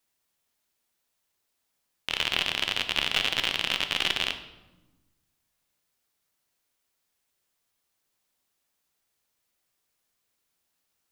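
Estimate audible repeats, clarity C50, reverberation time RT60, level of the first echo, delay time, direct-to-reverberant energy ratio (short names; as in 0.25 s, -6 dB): none, 10.5 dB, 1.1 s, none, none, 7.5 dB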